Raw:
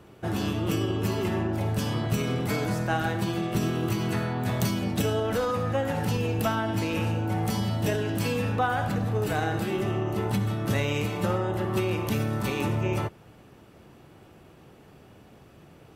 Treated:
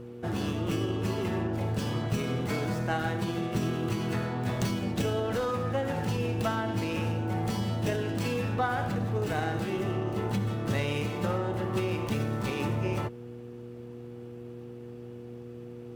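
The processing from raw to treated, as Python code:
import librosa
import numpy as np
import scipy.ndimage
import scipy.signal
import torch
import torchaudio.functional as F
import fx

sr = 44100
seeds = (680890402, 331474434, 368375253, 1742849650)

y = fx.dmg_buzz(x, sr, base_hz=120.0, harmonics=4, level_db=-40.0, tilt_db=0, odd_only=False)
y = fx.running_max(y, sr, window=3)
y = y * 10.0 ** (-3.0 / 20.0)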